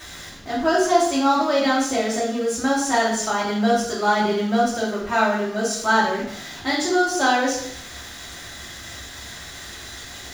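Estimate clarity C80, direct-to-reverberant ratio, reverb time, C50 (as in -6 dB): 7.0 dB, -7.0 dB, 0.70 s, 3.0 dB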